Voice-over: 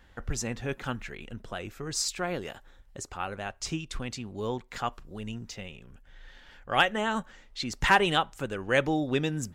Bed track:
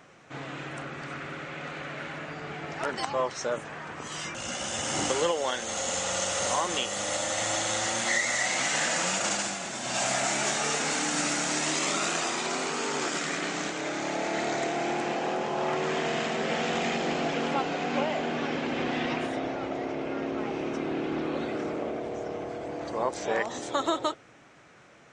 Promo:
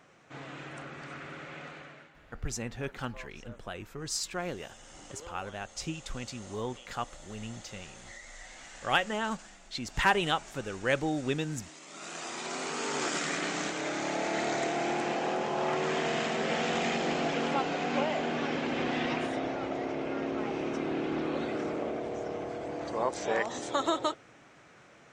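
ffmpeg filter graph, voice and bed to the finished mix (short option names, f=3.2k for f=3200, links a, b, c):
-filter_complex "[0:a]adelay=2150,volume=-3.5dB[a];[1:a]volume=15dB,afade=t=out:st=1.57:d=0.54:silence=0.149624,afade=t=in:st=11.88:d=1.2:silence=0.0944061[b];[a][b]amix=inputs=2:normalize=0"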